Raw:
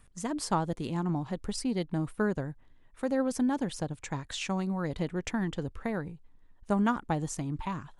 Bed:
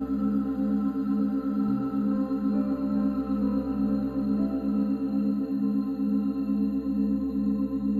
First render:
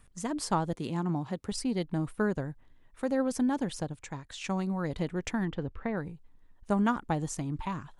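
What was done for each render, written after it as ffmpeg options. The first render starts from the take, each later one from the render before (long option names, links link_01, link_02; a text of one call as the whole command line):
ffmpeg -i in.wav -filter_complex "[0:a]asettb=1/sr,asplit=3[link_01][link_02][link_03];[link_01]atrim=end=0.774[link_04];[link_02]atrim=start=0.77:end=1.52,asetpts=PTS-STARTPTS,afade=type=in:duration=0.004:curve=qsin,afade=type=out:start_time=0.746:duration=0.004:curve=qsin,highpass=92[link_05];[link_03]atrim=start=1.516[link_06];[link_04][link_05]acrossfade=duration=0.004:curve1=hsin:curve2=qsin[link_07];[link_07][link_06]acrossfade=duration=0.004:curve1=qsin:curve2=hsin,asplit=3[link_08][link_09][link_10];[link_08]afade=type=out:start_time=5.45:duration=0.02[link_11];[link_09]lowpass=3000,afade=type=in:start_time=5.45:duration=0.02,afade=type=out:start_time=5.96:duration=0.02[link_12];[link_10]afade=type=in:start_time=5.96:duration=0.02[link_13];[link_11][link_12][link_13]amix=inputs=3:normalize=0,asplit=2[link_14][link_15];[link_14]atrim=end=4.44,asetpts=PTS-STARTPTS,afade=type=out:start_time=3.78:duration=0.66:curve=qua:silence=0.473151[link_16];[link_15]atrim=start=4.44,asetpts=PTS-STARTPTS,afade=type=in:duration=0.004:curve=hsin:silence=0.473151[link_17];[link_16][link_17]concat=n=2:v=0:a=1" out.wav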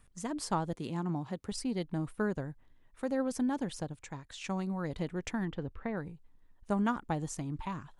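ffmpeg -i in.wav -af "volume=-3.5dB" out.wav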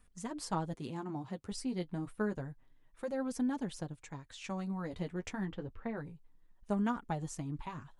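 ffmpeg -i in.wav -af "flanger=delay=3.9:depth=7.7:regen=-26:speed=0.29:shape=triangular" out.wav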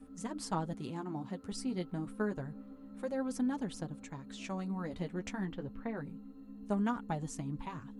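ffmpeg -i in.wav -i bed.wav -filter_complex "[1:a]volume=-23.5dB[link_01];[0:a][link_01]amix=inputs=2:normalize=0" out.wav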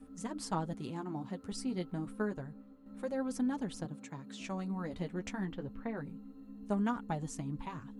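ffmpeg -i in.wav -filter_complex "[0:a]asettb=1/sr,asplit=3[link_01][link_02][link_03];[link_01]atrim=end=3.854[link_04];[link_02]atrim=start=3.85:end=4.41,asetpts=PTS-STARTPTS,afade=type=in:duration=0.004:curve=qsin,afade=type=out:start_time=0.556:duration=0.004:curve=qsin,highpass=frequency=96:width=0.5412,highpass=frequency=96:width=1.3066[link_05];[link_03]atrim=start=4.406[link_06];[link_04][link_05]acrossfade=duration=0.004:curve1=hsin:curve2=qsin[link_07];[link_07][link_06]acrossfade=duration=0.004:curve1=qsin:curve2=hsin,asplit=2[link_08][link_09];[link_08]atrim=end=2.86,asetpts=PTS-STARTPTS,afade=type=out:start_time=2.16:duration=0.7:silence=0.375837[link_10];[link_09]atrim=start=2.86,asetpts=PTS-STARTPTS,afade=type=in:duration=0.004:curve=hsin:silence=0.375837[link_11];[link_10][link_11]concat=n=2:v=0:a=1" out.wav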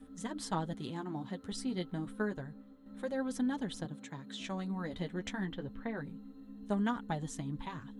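ffmpeg -i in.wav -af "superequalizer=11b=1.58:13b=2.24" out.wav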